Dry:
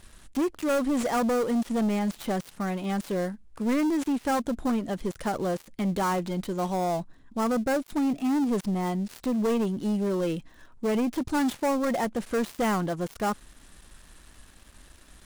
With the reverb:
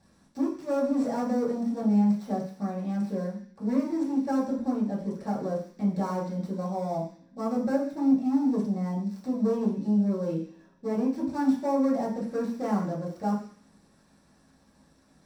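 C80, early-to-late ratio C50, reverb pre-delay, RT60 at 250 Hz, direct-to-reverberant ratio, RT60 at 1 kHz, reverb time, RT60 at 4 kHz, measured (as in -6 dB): 10.0 dB, 7.0 dB, 3 ms, 0.50 s, -7.0 dB, 0.50 s, 0.50 s, 0.85 s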